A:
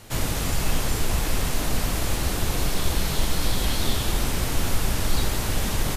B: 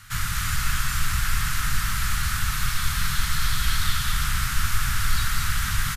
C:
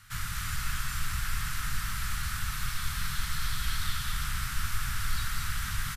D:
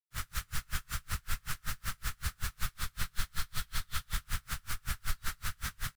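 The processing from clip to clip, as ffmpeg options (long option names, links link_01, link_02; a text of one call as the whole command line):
ffmpeg -i in.wav -filter_complex "[0:a]firequalizer=gain_entry='entry(140,0);entry(290,-21);entry(450,-30);entry(1300,10);entry(2500,1)':delay=0.05:min_phase=1,asplit=2[link_01][link_02];[link_02]aecho=0:1:219:0.562[link_03];[link_01][link_03]amix=inputs=2:normalize=0,volume=-1.5dB" out.wav
ffmpeg -i in.wav -af "bandreject=frequency=6700:width=27,volume=-8dB" out.wav
ffmpeg -i in.wav -af "acrusher=bits=5:mix=0:aa=0.5,aeval=exprs='val(0)*pow(10,-38*(0.5-0.5*cos(2*PI*5.3*n/s))/20)':channel_layout=same,volume=1dB" out.wav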